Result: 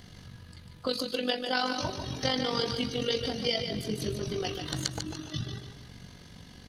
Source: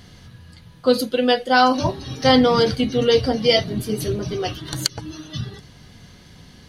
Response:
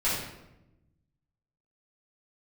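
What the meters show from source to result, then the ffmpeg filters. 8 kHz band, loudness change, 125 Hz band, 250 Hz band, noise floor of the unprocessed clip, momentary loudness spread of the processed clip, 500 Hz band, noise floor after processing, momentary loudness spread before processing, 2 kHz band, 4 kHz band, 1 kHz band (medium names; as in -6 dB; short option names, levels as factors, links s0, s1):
-7.5 dB, -12.0 dB, -9.0 dB, -13.0 dB, -47 dBFS, 20 LU, -14.0 dB, -51 dBFS, 16 LU, -11.0 dB, -8.0 dB, -15.0 dB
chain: -filter_complex "[0:a]tremolo=f=47:d=0.621,acrossover=split=1900|7600[s0][s1][s2];[s0]acompressor=threshold=0.0355:ratio=4[s3];[s1]acompressor=threshold=0.0398:ratio=4[s4];[s2]acompressor=threshold=0.00251:ratio=4[s5];[s3][s4][s5]amix=inputs=3:normalize=0,aecho=1:1:146|292|438|584:0.447|0.17|0.0645|0.0245,volume=0.794"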